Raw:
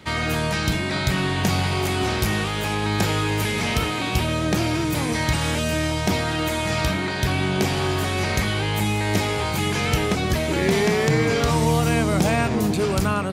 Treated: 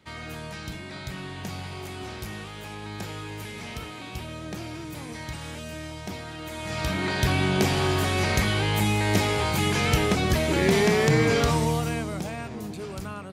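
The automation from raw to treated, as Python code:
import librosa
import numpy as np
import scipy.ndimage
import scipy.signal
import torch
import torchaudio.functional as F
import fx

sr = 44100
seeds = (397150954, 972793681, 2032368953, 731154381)

y = fx.gain(x, sr, db=fx.line((6.42, -14.0), (7.1, -1.0), (11.39, -1.0), (12.32, -14.0)))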